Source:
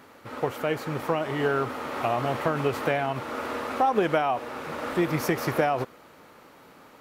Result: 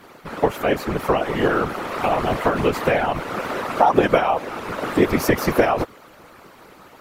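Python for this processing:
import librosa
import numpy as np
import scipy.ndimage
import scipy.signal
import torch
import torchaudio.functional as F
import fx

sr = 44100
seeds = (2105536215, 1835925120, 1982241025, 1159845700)

y = fx.whisperise(x, sr, seeds[0])
y = fx.hpss(y, sr, part='percussive', gain_db=6)
y = F.gain(torch.from_numpy(y), 2.0).numpy()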